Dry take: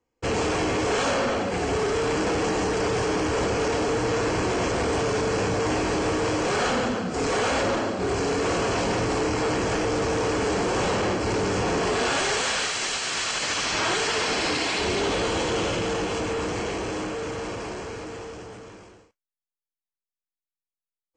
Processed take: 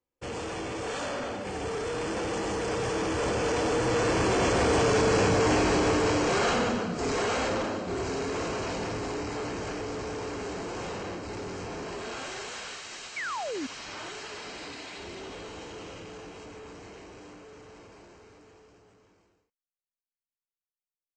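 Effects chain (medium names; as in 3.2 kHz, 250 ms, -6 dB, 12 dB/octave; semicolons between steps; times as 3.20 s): Doppler pass-by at 5.15 s, 16 m/s, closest 20 m; painted sound fall, 13.16–13.67 s, 240–2400 Hz -35 dBFS; trim +1.5 dB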